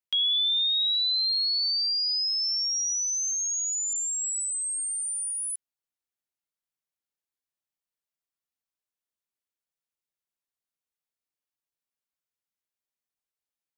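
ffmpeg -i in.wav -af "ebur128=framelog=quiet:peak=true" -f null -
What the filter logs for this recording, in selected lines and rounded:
Integrated loudness:
  I:         -24.2 LUFS
  Threshold: -34.2 LUFS
Loudness range:
  LRA:        12.2 LU
  Threshold: -46.2 LUFS
  LRA low:   -35.1 LUFS
  LRA high:  -22.9 LUFS
True peak:
  Peak:      -21.0 dBFS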